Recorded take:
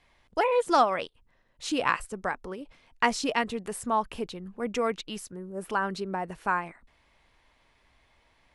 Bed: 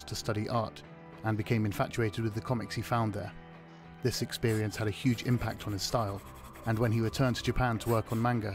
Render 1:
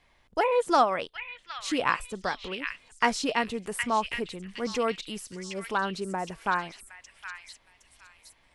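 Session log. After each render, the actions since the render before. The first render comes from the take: delay with a stepping band-pass 0.765 s, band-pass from 2500 Hz, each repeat 0.7 oct, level -2 dB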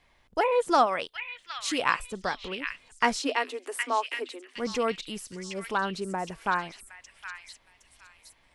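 0.86–1.95 tilt +1.5 dB/oct; 3.19–4.56 Chebyshev high-pass 250 Hz, order 10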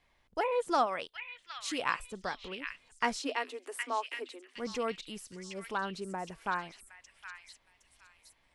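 gain -6.5 dB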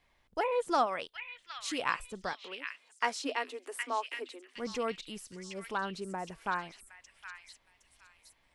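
2.33–3.23 HPF 410 Hz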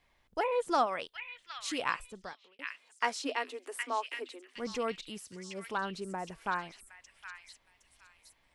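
1.83–2.59 fade out; 5.1–5.78 HPF 60 Hz

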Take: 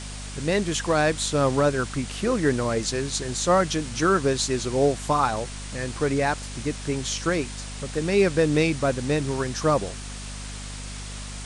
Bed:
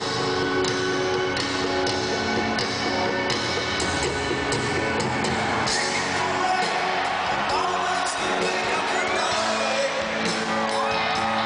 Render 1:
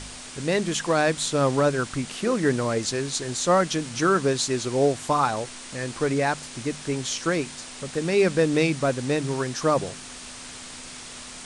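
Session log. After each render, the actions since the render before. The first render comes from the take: de-hum 50 Hz, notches 4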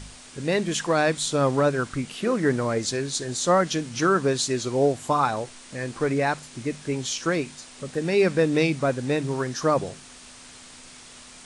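noise print and reduce 6 dB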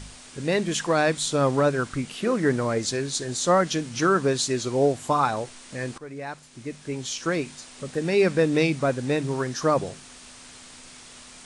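5.98–7.55 fade in, from -18 dB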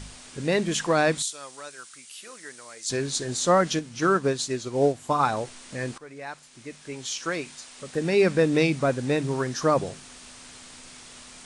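1.22–2.9 differentiator; 3.79–5.2 upward expander, over -30 dBFS; 5.95–7.94 low shelf 460 Hz -9 dB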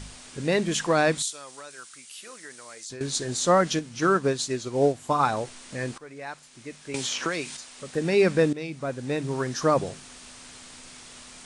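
1.34–3.01 compressor, threshold -36 dBFS; 6.94–7.57 three-band squash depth 100%; 8.53–9.55 fade in, from -17 dB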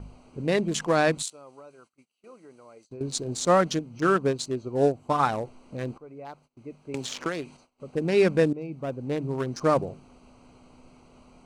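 Wiener smoothing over 25 samples; gate -55 dBFS, range -21 dB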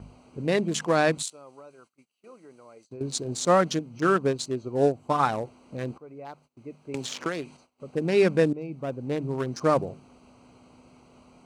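HPF 66 Hz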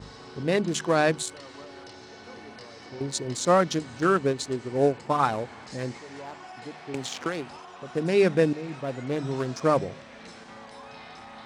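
add bed -21.5 dB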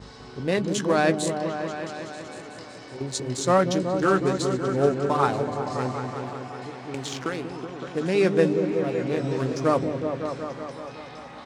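doubler 16 ms -12.5 dB; repeats that get brighter 0.187 s, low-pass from 400 Hz, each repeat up 1 oct, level -3 dB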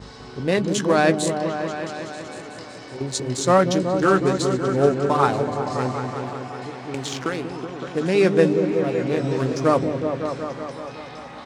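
gain +3.5 dB

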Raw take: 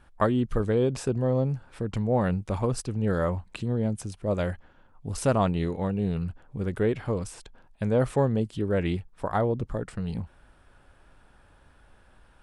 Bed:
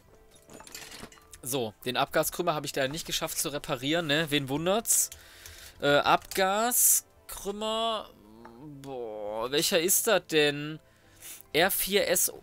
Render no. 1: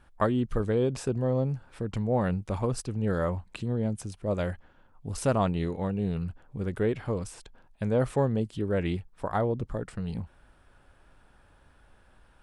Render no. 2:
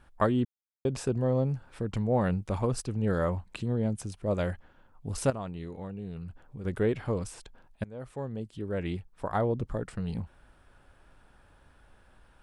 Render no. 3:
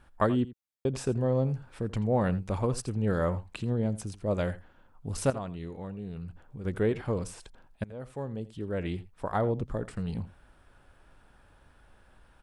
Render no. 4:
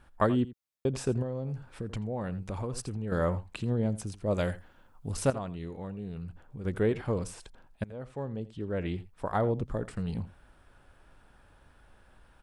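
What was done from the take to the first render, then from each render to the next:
gain -2 dB
0.45–0.85 mute; 5.3–6.65 compressor 2:1, threshold -42 dBFS; 7.84–9.54 fade in, from -22.5 dB
echo 84 ms -17.5 dB
1.22–3.12 compressor 4:1, threshold -31 dBFS; 4.32–5.12 high shelf 3700 Hz +7 dB; 7.96–9 air absorption 57 m

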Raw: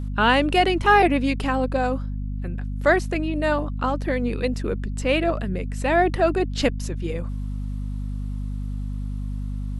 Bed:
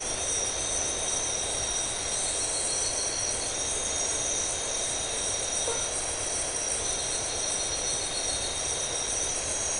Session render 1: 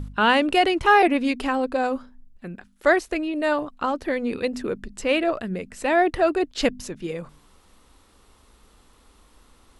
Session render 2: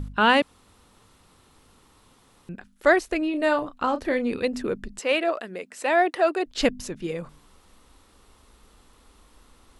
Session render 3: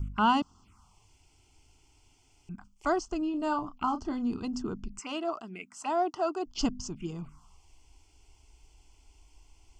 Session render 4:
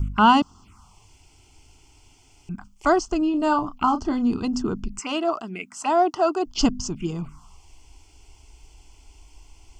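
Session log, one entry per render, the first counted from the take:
de-hum 50 Hz, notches 5
0.42–2.49 room tone; 3.18–4.26 doubler 32 ms -10.5 dB; 4.99–6.46 HPF 410 Hz
envelope phaser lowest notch 180 Hz, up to 2300 Hz, full sweep at -26 dBFS; fixed phaser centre 2600 Hz, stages 8
gain +9 dB

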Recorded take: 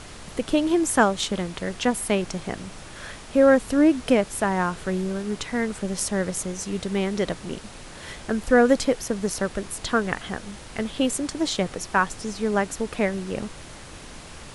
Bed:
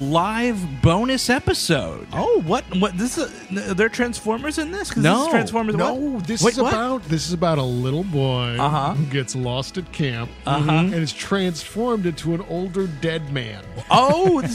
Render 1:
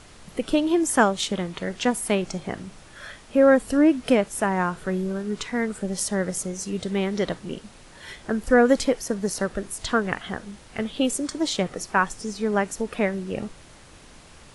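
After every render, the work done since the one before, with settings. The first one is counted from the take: noise print and reduce 7 dB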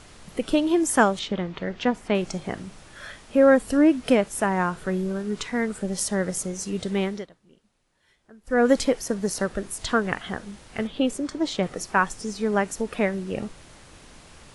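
1.19–2.15 air absorption 170 m; 7.04–8.67 dip -24 dB, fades 0.23 s; 10.87–11.63 LPF 2900 Hz 6 dB/oct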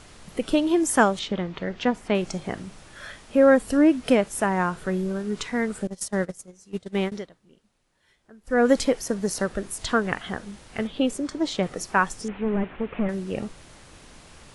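5.87–7.12 gate -27 dBFS, range -20 dB; 12.28–13.09 delta modulation 16 kbps, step -39 dBFS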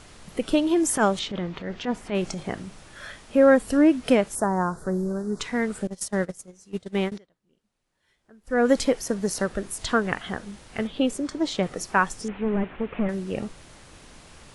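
0.72–2.43 transient shaper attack -10 dB, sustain +2 dB; 4.35–5.4 Butterworth band-stop 2700 Hz, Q 0.71; 7.18–8.88 fade in, from -22 dB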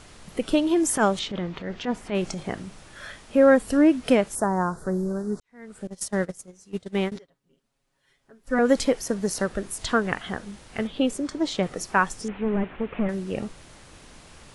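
5.4–6.03 fade in quadratic; 7.15–8.59 comb 7.3 ms, depth 89%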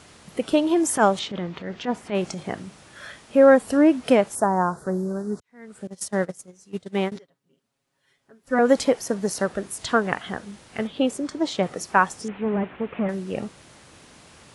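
HPF 87 Hz 12 dB/oct; dynamic EQ 780 Hz, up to +5 dB, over -33 dBFS, Q 1.1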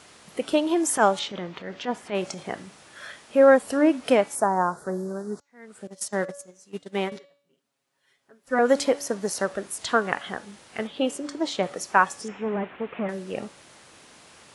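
low shelf 200 Hz -11.5 dB; de-hum 284.3 Hz, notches 27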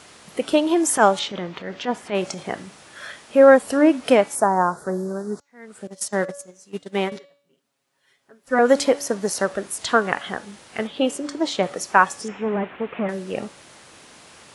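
gain +4 dB; limiter -1 dBFS, peak gain reduction 1 dB

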